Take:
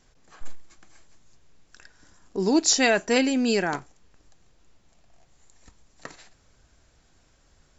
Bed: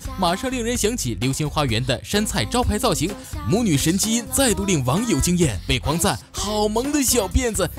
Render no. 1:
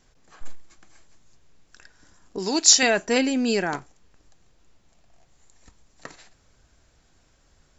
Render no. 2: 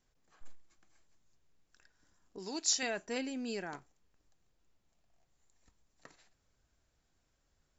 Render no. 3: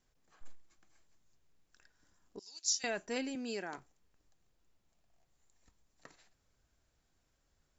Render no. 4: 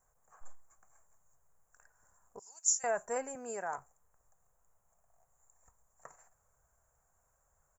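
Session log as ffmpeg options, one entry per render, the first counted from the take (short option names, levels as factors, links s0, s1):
-filter_complex "[0:a]asettb=1/sr,asplit=3[s0][s1][s2];[s0]atrim=end=2.384[s3];[s1]atrim=start=2.38:end=2.83,asetpts=PTS-STARTPTS,afade=t=in:d=0.004:c=qsin,afade=t=out:st=0.446:d=0.004:c=qsin,tiltshelf=f=890:g=-7[s4];[s2]atrim=start=2.826[s5];[s3][s4]acrossfade=d=0.004:c1=hsin:c2=qsin[s6];[s6][s5]acrossfade=d=0.004:c1=qsin:c2=hsin"
-af "volume=0.158"
-filter_complex "[0:a]asettb=1/sr,asplit=3[s0][s1][s2];[s0]atrim=end=2.394[s3];[s1]atrim=start=2.39:end=2.84,asetpts=PTS-STARTPTS,afade=t=in:d=0.004:c=qsin,afade=t=out:st=0.446:d=0.004:c=qsin,bandpass=f=5800:t=q:w=2.6[s4];[s2]atrim=start=2.836[s5];[s3][s4]acrossfade=d=0.004:c1=hsin:c2=qsin[s6];[s6][s5]acrossfade=d=0.004:c1=qsin:c2=hsin,asettb=1/sr,asplit=3[s7][s8][s9];[s7]atrim=end=3.354[s10];[s8]atrim=start=3.35:end=3.78,asetpts=PTS-STARTPTS,afade=t=in:d=0.004:c=qsin,afade=t=out:st=0.426:d=0.004:c=qsin,highpass=210[s11];[s9]atrim=start=3.776[s12];[s10][s11]acrossfade=d=0.004:c1=hsin:c2=qsin[s13];[s13][s12]acrossfade=d=0.004:c1=qsin:c2=hsin"
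-af "firequalizer=gain_entry='entry(130,0);entry(190,-6);entry(310,-13);entry(470,3);entry(720,8);entry(1100,9);entry(3700,-29);entry(6900,9)':delay=0.05:min_phase=1"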